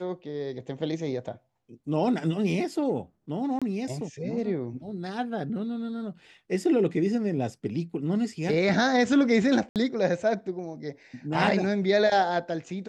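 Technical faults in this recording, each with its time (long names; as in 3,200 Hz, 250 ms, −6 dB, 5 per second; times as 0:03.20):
0:03.59–0:03.62: drop-out 26 ms
0:09.69–0:09.76: drop-out 68 ms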